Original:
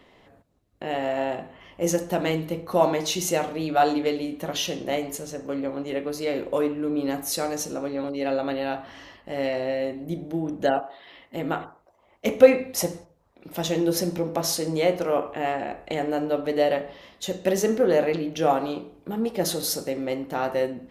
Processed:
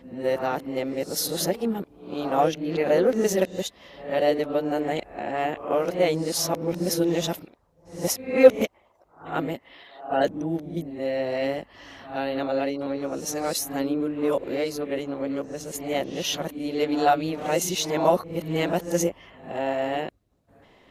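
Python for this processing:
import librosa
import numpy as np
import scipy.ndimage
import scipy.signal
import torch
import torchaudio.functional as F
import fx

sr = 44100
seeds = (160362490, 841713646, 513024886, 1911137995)

y = x[::-1].copy()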